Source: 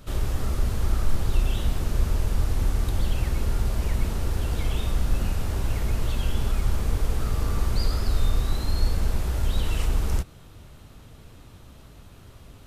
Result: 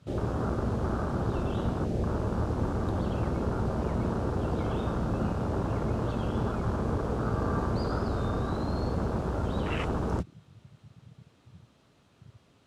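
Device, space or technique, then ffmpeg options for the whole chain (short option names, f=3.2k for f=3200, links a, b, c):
over-cleaned archive recording: -af "highpass=140,lowpass=7.1k,afwtdn=0.0158,volume=6dB"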